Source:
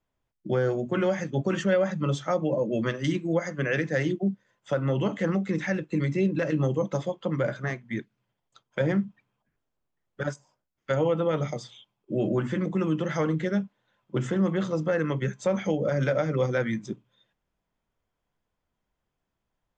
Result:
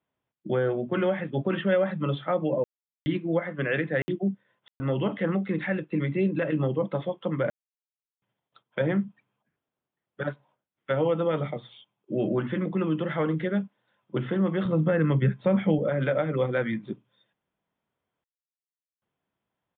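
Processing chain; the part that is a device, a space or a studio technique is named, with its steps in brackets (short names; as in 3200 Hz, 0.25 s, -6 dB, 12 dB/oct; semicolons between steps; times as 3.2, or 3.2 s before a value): call with lost packets (HPF 120 Hz 12 dB/oct; downsampling 8000 Hz; packet loss packets of 60 ms bursts); 14.65–15.79 tone controls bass +10 dB, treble -3 dB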